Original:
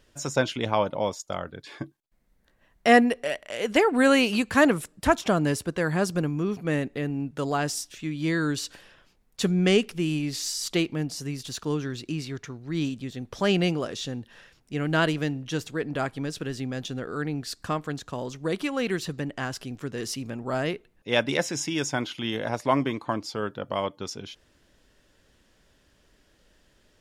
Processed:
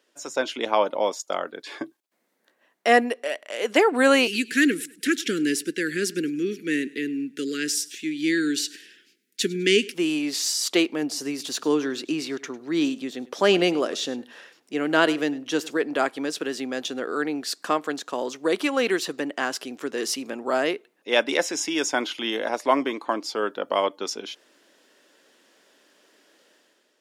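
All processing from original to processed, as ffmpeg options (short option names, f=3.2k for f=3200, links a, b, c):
-filter_complex "[0:a]asettb=1/sr,asplit=3[a][b][c];[a]atrim=end=4.274[d];[b]atrim=start=4.27:end=9.94,asetpts=PTS-STARTPTS,afade=t=in:d=0.004:c=qsin,afade=t=out:st=5.666:d=0.004:c=qsin,asuperstop=centerf=820:order=8:qfactor=0.64,aecho=1:1:102|204|306:0.0841|0.0303|0.0109,atrim=end_sample=250047[e];[c]atrim=start=9.936[f];[d][e]acrossfade=d=0.004:c1=hsin:c2=qsin[g];[g][f]acrossfade=d=0.004:c1=qsin:c2=hsin,asettb=1/sr,asplit=3[h][i][j];[h]atrim=end=11.024[k];[i]atrim=start=11.02:end=15.77,asetpts=PTS-STARTPTS,afade=t=in:d=0.004:c=qsin,afade=t=out:st=4.746:d=0.004:c=qsin,lowshelf=f=380:g=4,aecho=1:1:101:0.1,atrim=end_sample=209475[l];[j]atrim=start=15.766[m];[k][l]acrossfade=d=0.004:c1=hsin:c2=qsin[n];[n][m]acrossfade=d=0.004:c1=qsin:c2=hsin,highpass=f=280:w=0.5412,highpass=f=280:w=1.3066,dynaudnorm=f=110:g=9:m=9.5dB,volume=-3.5dB"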